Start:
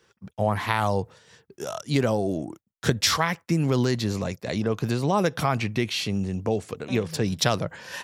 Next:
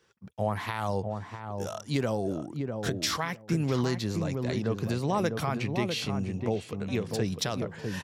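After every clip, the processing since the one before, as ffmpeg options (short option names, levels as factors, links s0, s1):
-filter_complex "[0:a]alimiter=limit=0.266:level=0:latency=1:release=247,asplit=2[s0][s1];[s1]adelay=650,lowpass=f=810:p=1,volume=0.631,asplit=2[s2][s3];[s3]adelay=650,lowpass=f=810:p=1,volume=0.16,asplit=2[s4][s5];[s5]adelay=650,lowpass=f=810:p=1,volume=0.16[s6];[s2][s4][s6]amix=inputs=3:normalize=0[s7];[s0][s7]amix=inputs=2:normalize=0,volume=0.562"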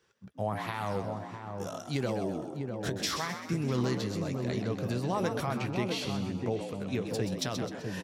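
-filter_complex "[0:a]asplit=2[s0][s1];[s1]adelay=16,volume=0.2[s2];[s0][s2]amix=inputs=2:normalize=0,asplit=6[s3][s4][s5][s6][s7][s8];[s4]adelay=129,afreqshift=72,volume=0.398[s9];[s5]adelay=258,afreqshift=144,volume=0.168[s10];[s6]adelay=387,afreqshift=216,volume=0.07[s11];[s7]adelay=516,afreqshift=288,volume=0.0295[s12];[s8]adelay=645,afreqshift=360,volume=0.0124[s13];[s3][s9][s10][s11][s12][s13]amix=inputs=6:normalize=0,volume=0.668"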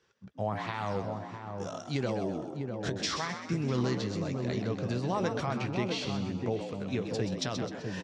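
-af "lowpass=f=7000:w=0.5412,lowpass=f=7000:w=1.3066"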